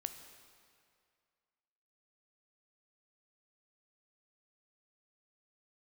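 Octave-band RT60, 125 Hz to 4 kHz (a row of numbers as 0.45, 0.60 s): 2.1, 2.0, 2.2, 2.2, 2.1, 1.9 s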